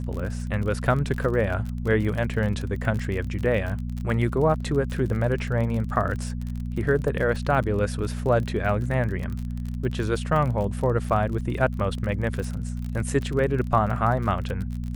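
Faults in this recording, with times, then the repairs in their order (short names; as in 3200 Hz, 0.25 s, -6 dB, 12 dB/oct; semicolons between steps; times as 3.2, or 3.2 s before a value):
crackle 35/s -30 dBFS
hum 60 Hz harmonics 4 -30 dBFS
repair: de-click; de-hum 60 Hz, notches 4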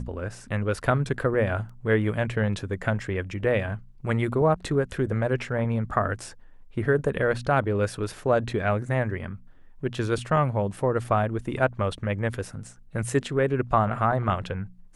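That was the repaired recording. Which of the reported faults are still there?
none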